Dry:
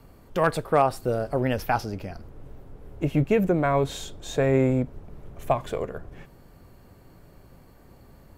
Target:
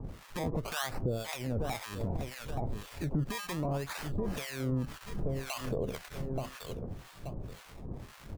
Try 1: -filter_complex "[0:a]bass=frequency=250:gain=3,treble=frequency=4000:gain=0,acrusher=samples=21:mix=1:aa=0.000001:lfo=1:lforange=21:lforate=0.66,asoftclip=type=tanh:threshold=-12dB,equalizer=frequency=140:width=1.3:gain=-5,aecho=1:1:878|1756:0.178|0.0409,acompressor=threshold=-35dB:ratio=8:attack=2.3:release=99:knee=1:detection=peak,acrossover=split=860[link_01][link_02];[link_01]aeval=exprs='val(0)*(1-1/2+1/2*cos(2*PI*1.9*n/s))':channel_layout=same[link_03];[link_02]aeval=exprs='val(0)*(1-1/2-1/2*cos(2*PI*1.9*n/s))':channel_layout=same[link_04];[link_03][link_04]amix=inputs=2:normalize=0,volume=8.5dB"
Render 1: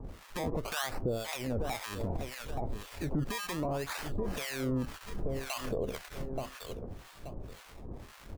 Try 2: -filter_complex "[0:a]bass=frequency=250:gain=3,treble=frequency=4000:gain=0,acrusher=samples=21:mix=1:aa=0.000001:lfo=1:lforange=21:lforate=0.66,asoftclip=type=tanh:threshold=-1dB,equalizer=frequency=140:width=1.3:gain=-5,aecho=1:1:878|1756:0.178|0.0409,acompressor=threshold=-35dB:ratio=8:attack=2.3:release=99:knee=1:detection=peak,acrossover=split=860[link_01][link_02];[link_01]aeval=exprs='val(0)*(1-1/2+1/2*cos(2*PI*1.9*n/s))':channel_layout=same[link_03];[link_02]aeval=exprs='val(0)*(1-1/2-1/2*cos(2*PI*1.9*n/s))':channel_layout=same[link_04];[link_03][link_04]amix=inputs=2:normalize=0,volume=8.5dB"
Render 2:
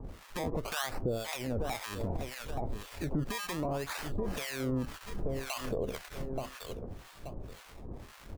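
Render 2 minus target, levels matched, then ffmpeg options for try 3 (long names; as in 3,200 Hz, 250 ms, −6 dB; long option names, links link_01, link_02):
125 Hz band −3.5 dB
-filter_complex "[0:a]bass=frequency=250:gain=3,treble=frequency=4000:gain=0,acrusher=samples=21:mix=1:aa=0.000001:lfo=1:lforange=21:lforate=0.66,asoftclip=type=tanh:threshold=-1dB,equalizer=frequency=140:width=1.3:gain=2,aecho=1:1:878|1756:0.178|0.0409,acompressor=threshold=-35dB:ratio=8:attack=2.3:release=99:knee=1:detection=peak,acrossover=split=860[link_01][link_02];[link_01]aeval=exprs='val(0)*(1-1/2+1/2*cos(2*PI*1.9*n/s))':channel_layout=same[link_03];[link_02]aeval=exprs='val(0)*(1-1/2-1/2*cos(2*PI*1.9*n/s))':channel_layout=same[link_04];[link_03][link_04]amix=inputs=2:normalize=0,volume=8.5dB"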